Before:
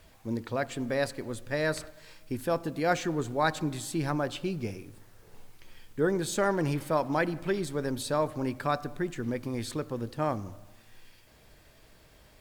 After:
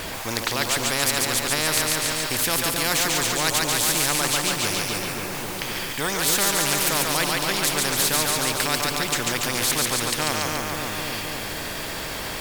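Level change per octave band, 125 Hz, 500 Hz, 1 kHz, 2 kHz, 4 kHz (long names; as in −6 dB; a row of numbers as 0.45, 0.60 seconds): +2.5, +1.5, +7.0, +12.0, +20.5 decibels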